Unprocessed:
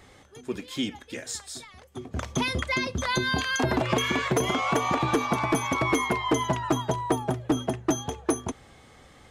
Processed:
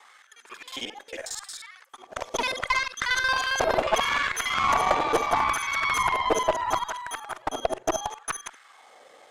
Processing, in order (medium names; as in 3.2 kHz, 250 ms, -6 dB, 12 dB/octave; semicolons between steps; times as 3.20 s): time reversed locally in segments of 45 ms; LFO high-pass sine 0.74 Hz 530–1600 Hz; Chebyshev shaper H 6 -18 dB, 8 -30 dB, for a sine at -8.5 dBFS